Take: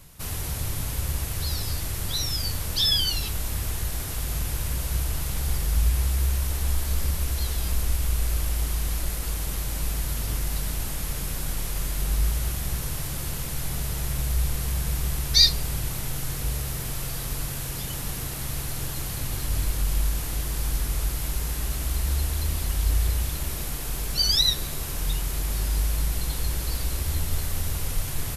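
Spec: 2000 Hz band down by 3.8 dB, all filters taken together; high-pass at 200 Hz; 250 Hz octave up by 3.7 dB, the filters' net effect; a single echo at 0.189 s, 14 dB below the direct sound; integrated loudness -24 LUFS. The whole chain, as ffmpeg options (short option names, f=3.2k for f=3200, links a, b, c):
-af "highpass=200,equalizer=f=250:t=o:g=9,equalizer=f=2k:t=o:g=-5,aecho=1:1:189:0.2,volume=5.5dB"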